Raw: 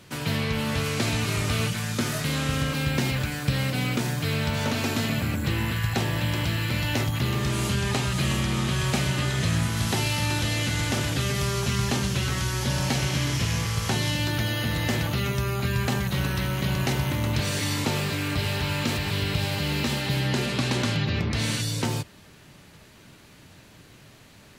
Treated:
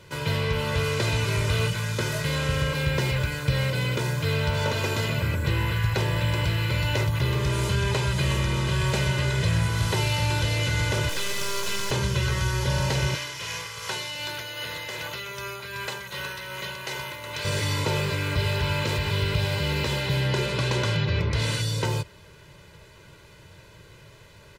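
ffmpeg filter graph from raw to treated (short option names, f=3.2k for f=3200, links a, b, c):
-filter_complex "[0:a]asettb=1/sr,asplit=3[a][b][c];[a]atrim=end=11.094[d];[b]atrim=start=11.09:end=11.91,asetpts=PTS-STARTPTS,afade=t=in:d=0.004:c=qsin,afade=t=out:st=0.816:d=0.004:c=qsin,highpass=f=190:w=0.5412,highpass=f=190:w=1.3066,highshelf=f=2.3k:g=9,aeval=exprs='max(val(0),0)':c=same[e];[c]atrim=start=11.906[f];[d][e]acrossfade=d=0.004:c1=hsin:c2=qsin[g];[g][f]acrossfade=d=0.004:c1=qsin:c2=hsin,asettb=1/sr,asplit=3[h][i][j];[h]atrim=end=13.154[k];[i]atrim=start=13.15:end=17.45,asetpts=PTS-STARTPTS,afade=t=in:d=0.004:c=qsin,afade=t=out:st=4.296:d=0.004:c=qsin,highpass=f=1k:p=1,tremolo=f=2.6:d=0.38[l];[j]atrim=start=17.446[m];[k][l]acrossfade=d=0.004:c1=hsin:c2=qsin[n];[n][m]acrossfade=d=0.004:c1=qsin:c2=hsin,highshelf=f=4.9k:g=-6.5,aecho=1:1:2:0.78,acontrast=79,volume=-7dB"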